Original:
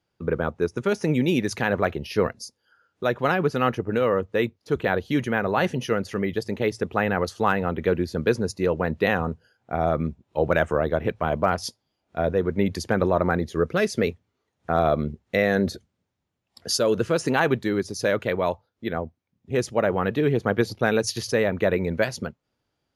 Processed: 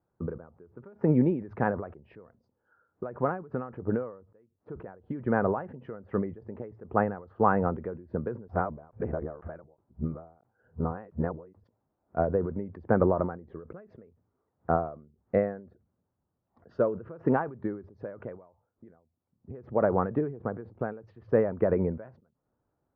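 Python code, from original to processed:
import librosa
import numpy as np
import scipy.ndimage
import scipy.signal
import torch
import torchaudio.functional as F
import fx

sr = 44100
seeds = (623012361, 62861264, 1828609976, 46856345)

y = fx.edit(x, sr, fx.reverse_span(start_s=8.48, length_s=3.16), tone=tone)
y = scipy.signal.sosfilt(scipy.signal.butter(4, 1300.0, 'lowpass', fs=sr, output='sos'), y)
y = fx.end_taper(y, sr, db_per_s=110.0)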